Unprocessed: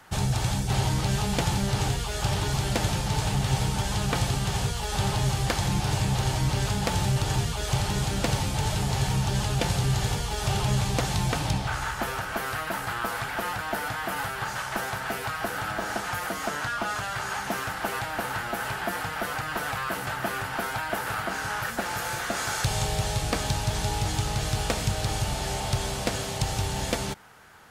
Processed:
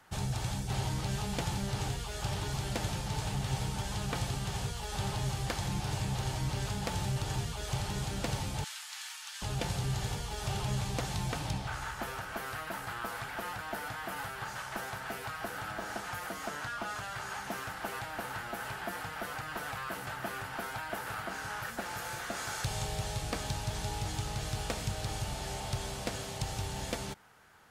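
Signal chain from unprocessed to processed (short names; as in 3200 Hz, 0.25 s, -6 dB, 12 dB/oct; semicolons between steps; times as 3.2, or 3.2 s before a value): 8.64–9.42 HPF 1300 Hz 24 dB/oct; gain -8.5 dB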